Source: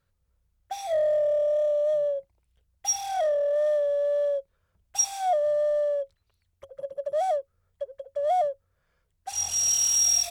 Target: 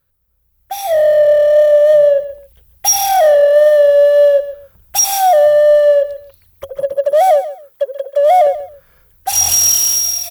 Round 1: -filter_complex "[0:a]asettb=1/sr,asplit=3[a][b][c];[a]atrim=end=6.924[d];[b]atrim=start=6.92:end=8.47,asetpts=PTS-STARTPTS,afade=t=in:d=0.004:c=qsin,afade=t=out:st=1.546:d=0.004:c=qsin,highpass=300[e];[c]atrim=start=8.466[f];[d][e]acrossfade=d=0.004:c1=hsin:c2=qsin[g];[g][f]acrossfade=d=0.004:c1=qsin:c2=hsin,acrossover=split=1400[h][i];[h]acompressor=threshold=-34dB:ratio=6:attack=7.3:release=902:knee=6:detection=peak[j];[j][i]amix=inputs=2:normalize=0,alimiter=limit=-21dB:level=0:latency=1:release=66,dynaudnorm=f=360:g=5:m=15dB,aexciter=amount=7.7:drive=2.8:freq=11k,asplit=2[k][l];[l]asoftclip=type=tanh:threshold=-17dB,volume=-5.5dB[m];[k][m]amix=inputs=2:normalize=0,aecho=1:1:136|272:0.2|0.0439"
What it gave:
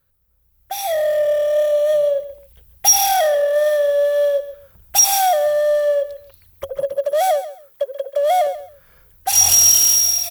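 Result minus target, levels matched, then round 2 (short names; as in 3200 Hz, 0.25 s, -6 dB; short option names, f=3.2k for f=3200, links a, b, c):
compressor: peak gain reduction +13 dB
-filter_complex "[0:a]asettb=1/sr,asplit=3[a][b][c];[a]atrim=end=6.924[d];[b]atrim=start=6.92:end=8.47,asetpts=PTS-STARTPTS,afade=t=in:d=0.004:c=qsin,afade=t=out:st=1.546:d=0.004:c=qsin,highpass=300[e];[c]atrim=start=8.466[f];[d][e]acrossfade=d=0.004:c1=hsin:c2=qsin[g];[g][f]acrossfade=d=0.004:c1=qsin:c2=hsin,alimiter=limit=-21dB:level=0:latency=1:release=66,dynaudnorm=f=360:g=5:m=15dB,aexciter=amount=7.7:drive=2.8:freq=11k,asplit=2[h][i];[i]asoftclip=type=tanh:threshold=-17dB,volume=-5.5dB[j];[h][j]amix=inputs=2:normalize=0,aecho=1:1:136|272:0.2|0.0439"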